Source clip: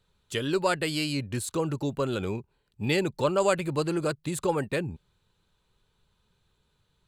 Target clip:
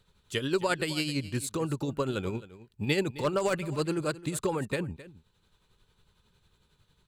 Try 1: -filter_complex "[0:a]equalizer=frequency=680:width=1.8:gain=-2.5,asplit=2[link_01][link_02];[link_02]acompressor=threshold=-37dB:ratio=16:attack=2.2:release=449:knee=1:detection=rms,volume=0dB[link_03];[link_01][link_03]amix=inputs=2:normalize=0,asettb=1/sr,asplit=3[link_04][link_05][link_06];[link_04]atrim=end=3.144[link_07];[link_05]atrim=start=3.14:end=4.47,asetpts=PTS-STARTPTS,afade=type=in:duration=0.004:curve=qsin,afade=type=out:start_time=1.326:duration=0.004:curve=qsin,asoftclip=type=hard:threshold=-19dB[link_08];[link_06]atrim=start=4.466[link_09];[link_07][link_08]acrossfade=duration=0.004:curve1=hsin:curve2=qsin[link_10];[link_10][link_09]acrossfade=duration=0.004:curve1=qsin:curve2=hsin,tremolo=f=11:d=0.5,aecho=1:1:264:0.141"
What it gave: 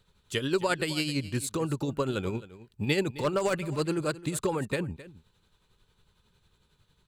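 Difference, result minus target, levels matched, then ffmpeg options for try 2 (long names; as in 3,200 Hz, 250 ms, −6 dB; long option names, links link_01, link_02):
downward compressor: peak gain reduction −10 dB
-filter_complex "[0:a]equalizer=frequency=680:width=1.8:gain=-2.5,asplit=2[link_01][link_02];[link_02]acompressor=threshold=-47.5dB:ratio=16:attack=2.2:release=449:knee=1:detection=rms,volume=0dB[link_03];[link_01][link_03]amix=inputs=2:normalize=0,asettb=1/sr,asplit=3[link_04][link_05][link_06];[link_04]atrim=end=3.144[link_07];[link_05]atrim=start=3.14:end=4.47,asetpts=PTS-STARTPTS,afade=type=in:duration=0.004:curve=qsin,afade=type=out:start_time=1.326:duration=0.004:curve=qsin,asoftclip=type=hard:threshold=-19dB[link_08];[link_06]atrim=start=4.466[link_09];[link_07][link_08]acrossfade=duration=0.004:curve1=hsin:curve2=qsin[link_10];[link_10][link_09]acrossfade=duration=0.004:curve1=qsin:curve2=hsin,tremolo=f=11:d=0.5,aecho=1:1:264:0.141"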